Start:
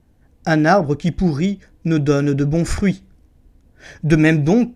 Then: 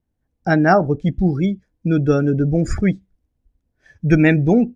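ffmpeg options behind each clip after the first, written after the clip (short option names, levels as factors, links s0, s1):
-af "afftdn=nr=19:nf=-27"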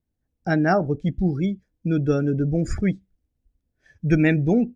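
-af "equalizer=f=1000:w=1.3:g=-4,volume=0.596"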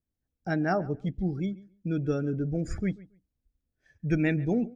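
-filter_complex "[0:a]asplit=2[s0][s1];[s1]adelay=139,lowpass=f=2600:p=1,volume=0.1,asplit=2[s2][s3];[s3]adelay=139,lowpass=f=2600:p=1,volume=0.18[s4];[s0][s2][s4]amix=inputs=3:normalize=0,volume=0.422"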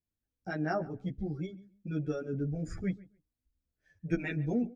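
-filter_complex "[0:a]asplit=2[s0][s1];[s1]adelay=11.2,afreqshift=1.6[s2];[s0][s2]amix=inputs=2:normalize=1,volume=0.794"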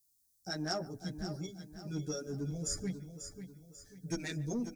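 -filter_complex "[0:a]asoftclip=type=tanh:threshold=0.0631,aexciter=amount=7.3:drive=9.3:freq=4100,asplit=2[s0][s1];[s1]aecho=0:1:541|1082|1623|2164:0.316|0.126|0.0506|0.0202[s2];[s0][s2]amix=inputs=2:normalize=0,volume=0.631"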